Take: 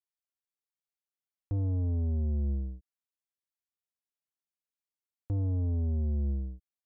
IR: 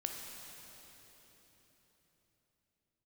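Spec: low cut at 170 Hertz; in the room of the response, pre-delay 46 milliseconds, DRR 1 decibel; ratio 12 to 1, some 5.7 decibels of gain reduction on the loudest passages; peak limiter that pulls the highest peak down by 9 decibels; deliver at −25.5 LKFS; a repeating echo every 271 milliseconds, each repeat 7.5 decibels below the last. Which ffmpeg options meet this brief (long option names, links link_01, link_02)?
-filter_complex "[0:a]highpass=170,acompressor=threshold=-40dB:ratio=12,alimiter=level_in=16dB:limit=-24dB:level=0:latency=1,volume=-16dB,aecho=1:1:271|542|813|1084|1355:0.422|0.177|0.0744|0.0312|0.0131,asplit=2[link_01][link_02];[1:a]atrim=start_sample=2205,adelay=46[link_03];[link_02][link_03]afir=irnorm=-1:irlink=0,volume=-1.5dB[link_04];[link_01][link_04]amix=inputs=2:normalize=0,volume=21dB"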